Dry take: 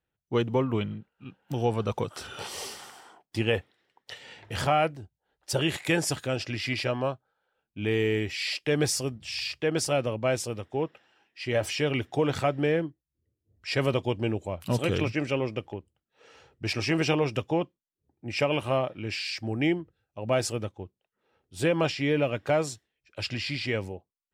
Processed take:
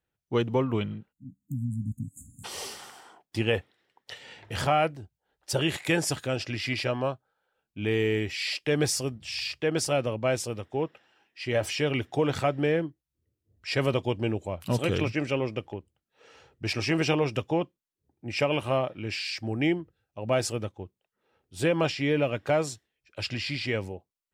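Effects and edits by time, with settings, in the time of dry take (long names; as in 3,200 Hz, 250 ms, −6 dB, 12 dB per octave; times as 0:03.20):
0:01.12–0:02.44: time-frequency box erased 300–6,400 Hz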